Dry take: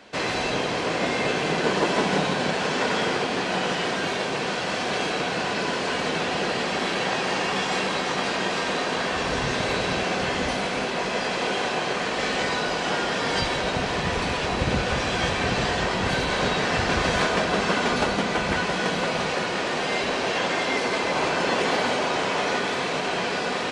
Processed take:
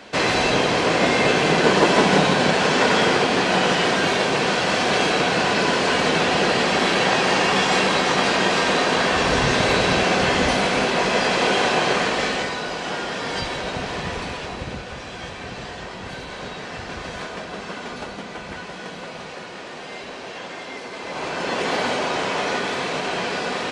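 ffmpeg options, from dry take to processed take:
-af "volume=7.08,afade=t=out:st=11.95:d=0.58:silence=0.375837,afade=t=out:st=14.02:d=0.83:silence=0.421697,afade=t=in:st=20.94:d=0.88:silence=0.298538"

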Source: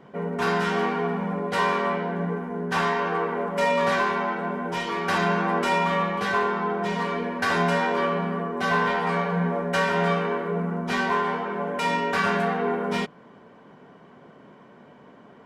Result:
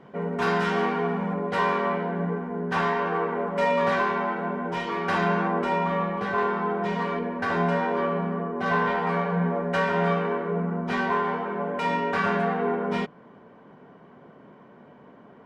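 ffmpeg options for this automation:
-af "asetnsamples=n=441:p=0,asendcmd='1.34 lowpass f 2400;5.48 lowpass f 1100;6.38 lowpass f 2300;7.19 lowpass f 1200;8.66 lowpass f 2000',lowpass=f=5000:p=1"

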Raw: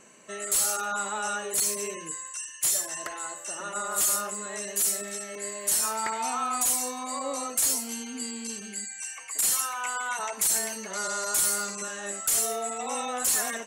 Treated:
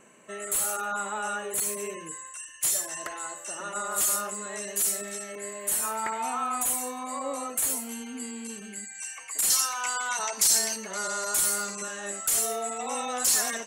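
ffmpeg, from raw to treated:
-af "asetnsamples=n=441:p=0,asendcmd='2.61 equalizer g -3;5.32 equalizer g -11.5;8.95 equalizer g -2;9.5 equalizer g 10;10.76 equalizer g -1.5;13.1 equalizer g 6',equalizer=f=5100:t=o:w=0.84:g=-12"

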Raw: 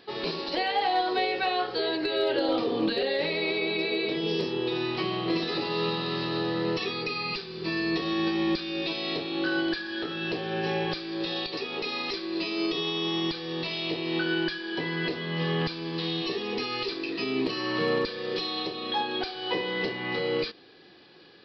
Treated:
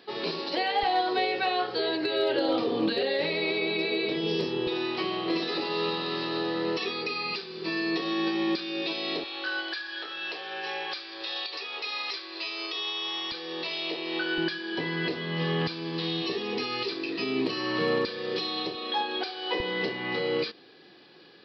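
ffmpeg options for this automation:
-af "asetnsamples=n=441:p=0,asendcmd='0.83 highpass f 73;4.67 highpass f 230;9.24 highpass f 780;13.32 highpass f 380;14.38 highpass f 93;18.75 highpass f 310;19.6 highpass f 120',highpass=160"

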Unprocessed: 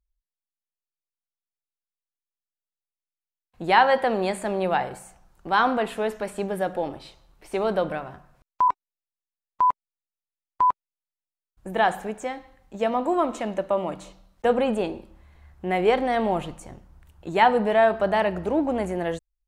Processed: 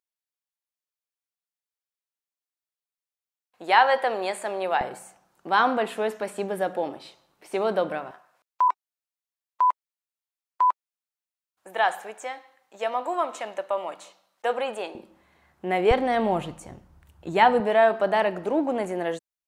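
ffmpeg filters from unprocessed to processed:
-af "asetnsamples=n=441:p=0,asendcmd='4.81 highpass f 220;8.11 highpass f 640;14.95 highpass f 210;15.91 highpass f 62;17.6 highpass f 240',highpass=480"

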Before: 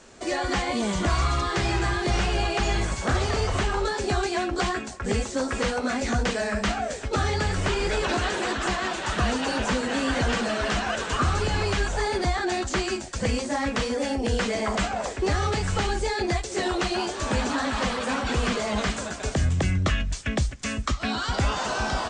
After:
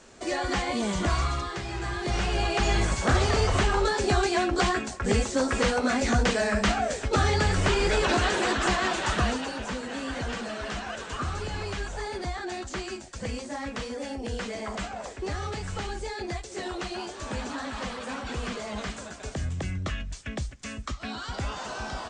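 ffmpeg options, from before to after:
-af "volume=3.16,afade=t=out:st=1.12:d=0.53:silence=0.375837,afade=t=in:st=1.65:d=1.25:silence=0.251189,afade=t=out:st=9.05:d=0.47:silence=0.334965"

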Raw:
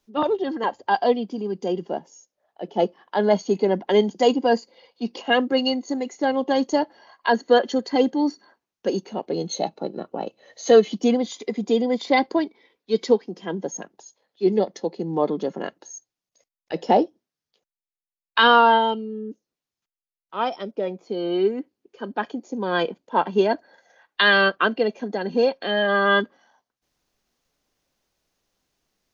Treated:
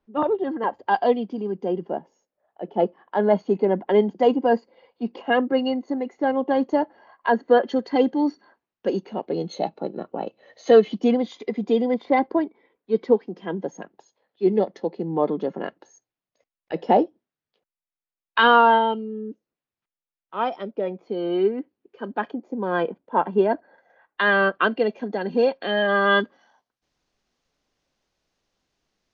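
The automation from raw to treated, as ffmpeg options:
-af "asetnsamples=n=441:p=0,asendcmd='0.79 lowpass f 2900;1.5 lowpass f 1900;7.67 lowpass f 3000;11.94 lowpass f 1600;13.17 lowpass f 2700;22.31 lowpass f 1700;24.55 lowpass f 3500;26.04 lowpass f 6000',lowpass=1800"

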